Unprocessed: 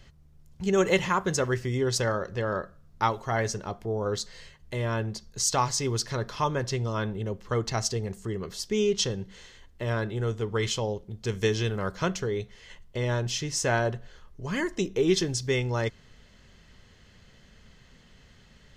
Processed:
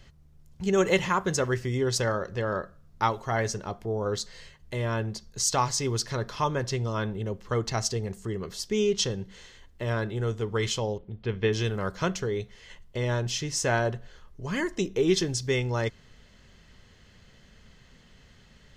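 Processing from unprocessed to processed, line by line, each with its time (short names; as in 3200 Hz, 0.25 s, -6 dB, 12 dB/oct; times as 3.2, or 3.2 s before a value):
10.98–11.53 LPF 3300 Hz 24 dB/oct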